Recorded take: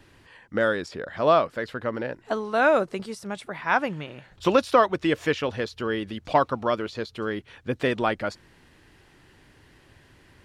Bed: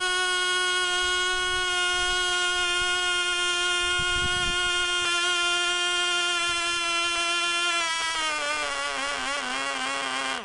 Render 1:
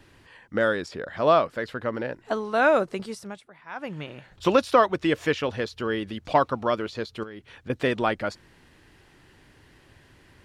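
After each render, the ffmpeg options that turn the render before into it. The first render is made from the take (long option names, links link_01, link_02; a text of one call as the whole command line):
ffmpeg -i in.wav -filter_complex "[0:a]asettb=1/sr,asplit=3[link_01][link_02][link_03];[link_01]atrim=end=7.234[link_04];[link_02]atrim=start=7.23:end=7.7,asetpts=PTS-STARTPTS,afade=type=in:duration=0.004:curve=qsin,afade=type=out:start_time=0.466:duration=0.004:curve=qsin,acompressor=threshold=-36dB:ratio=8:attack=3.2:release=140:knee=1:detection=peak[link_05];[link_03]atrim=start=7.696[link_06];[link_04][link_05]acrossfade=duration=0.004:curve1=hsin:curve2=qsin[link_07];[link_07][link_06]acrossfade=duration=0.004:curve1=qsin:curve2=hsin,asplit=3[link_08][link_09][link_10];[link_08]atrim=end=3.44,asetpts=PTS-STARTPTS,afade=type=out:start_time=3.17:duration=0.27:silence=0.158489[link_11];[link_09]atrim=start=3.44:end=3.75,asetpts=PTS-STARTPTS,volume=-16dB[link_12];[link_10]atrim=start=3.75,asetpts=PTS-STARTPTS,afade=type=in:duration=0.27:silence=0.158489[link_13];[link_11][link_12][link_13]concat=n=3:v=0:a=1" out.wav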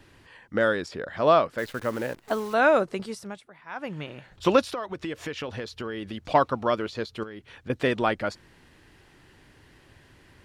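ffmpeg -i in.wav -filter_complex "[0:a]asettb=1/sr,asplit=3[link_01][link_02][link_03];[link_01]atrim=end=1.584[link_04];[link_02]atrim=start=1.58:end=2.54,asetpts=PTS-STARTPTS,afade=type=in:duration=0.004:curve=qsin,afade=type=out:start_time=0.956:duration=0.004:curve=qsin,acrusher=bits=8:dc=4:mix=0:aa=0.000001[link_05];[link_03]atrim=start=2.536[link_06];[link_04][link_05]acrossfade=duration=0.004:curve1=hsin:curve2=qsin[link_07];[link_07][link_06]acrossfade=duration=0.004:curve1=qsin:curve2=hsin,asettb=1/sr,asplit=3[link_08][link_09][link_10];[link_08]atrim=end=4.684[link_11];[link_09]atrim=start=4.68:end=6.26,asetpts=PTS-STARTPTS,afade=type=in:duration=0.004:curve=qsin,afade=type=out:start_time=1.576:duration=0.004:curve=qsin,acompressor=threshold=-29dB:ratio=6:attack=3.2:release=140:knee=1:detection=peak[link_12];[link_10]atrim=start=6.256[link_13];[link_11][link_12]acrossfade=duration=0.004:curve1=hsin:curve2=qsin[link_14];[link_14][link_13]acrossfade=duration=0.004:curve1=qsin:curve2=hsin" out.wav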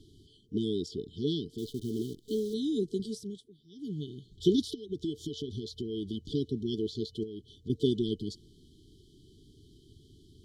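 ffmpeg -i in.wav -af "afftfilt=real='re*(1-between(b*sr/4096,450,3000))':imag='im*(1-between(b*sr/4096,450,3000))':win_size=4096:overlap=0.75,highshelf=frequency=6800:gain=-7" out.wav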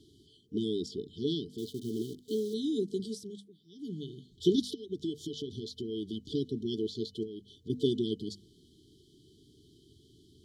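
ffmpeg -i in.wav -af "highpass=frequency=130:poles=1,bandreject=frequency=50:width_type=h:width=6,bandreject=frequency=100:width_type=h:width=6,bandreject=frequency=150:width_type=h:width=6,bandreject=frequency=200:width_type=h:width=6,bandreject=frequency=250:width_type=h:width=6" out.wav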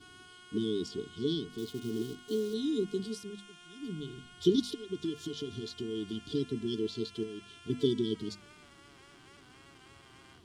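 ffmpeg -i in.wav -i bed.wav -filter_complex "[1:a]volume=-30dB[link_01];[0:a][link_01]amix=inputs=2:normalize=0" out.wav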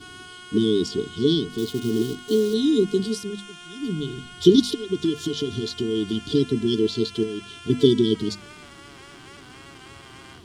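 ffmpeg -i in.wav -af "volume=12dB,alimiter=limit=-3dB:level=0:latency=1" out.wav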